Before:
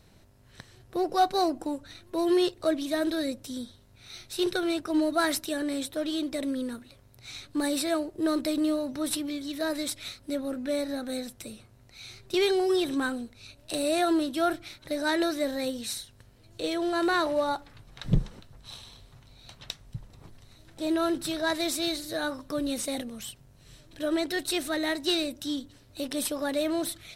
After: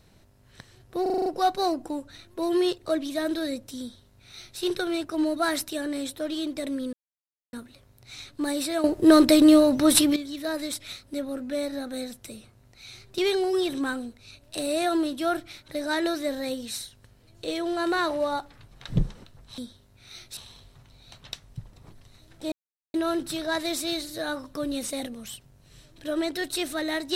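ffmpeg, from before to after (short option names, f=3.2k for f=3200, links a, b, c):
-filter_complex "[0:a]asplit=13[a][b][c][d][e][f][g][h][i][j][k][l][m];[a]atrim=end=1.062[n];[b]atrim=start=1.018:end=1.062[o];[c]atrim=start=1.018:end=1.062[p];[d]atrim=start=1.018:end=1.062[q];[e]atrim=start=1.018:end=1.062[r];[f]atrim=start=1.018:end=1.062[s];[g]atrim=start=1.018:end=6.69,asetpts=PTS-STARTPTS,afade=t=out:st=5.668:d=0.004:c=hsin,apad=pad_dur=0.6[t];[h]atrim=start=6.69:end=8.002,asetpts=PTS-STARTPTS,afade=t=in:d=0.004:c=hsin[u];[i]atrim=start=7.998:end=9.322,asetpts=PTS-STARTPTS,volume=11.5dB[v];[j]atrim=start=9.318:end=18.742[w];[k]atrim=start=3.568:end=4.362[x];[l]atrim=start=18.738:end=20.89,asetpts=PTS-STARTPTS,afade=t=out:st=2.148:d=0.004:c=hsin,apad=pad_dur=0.42[y];[m]atrim=start=20.89,asetpts=PTS-STARTPTS,afade=t=in:d=0.004:c=hsin[z];[n][o]acrossfade=d=0.004:c1=hsin:c2=hsin[aa];[aa][p]acrossfade=d=0.004:c1=hsin:c2=hsin[ab];[ab][q]acrossfade=d=0.004:c1=hsin:c2=hsin[ac];[ac][r]acrossfade=d=0.004:c1=hsin:c2=hsin[ad];[ad][s]acrossfade=d=0.004:c1=hsin:c2=hsin[ae];[t][u]concat=n=2:v=0:a=1[af];[ae][af]acrossfade=d=0.004:c1=hsin:c2=hsin[ag];[ag][v]acrossfade=d=0.004:c1=hsin:c2=hsin[ah];[ah][w]acrossfade=d=0.004:c1=hsin:c2=hsin[ai];[ai][x]acrossfade=d=0.004:c1=hsin:c2=hsin[aj];[y][z]concat=n=2:v=0:a=1[ak];[aj][ak]acrossfade=d=0.004:c1=hsin:c2=hsin"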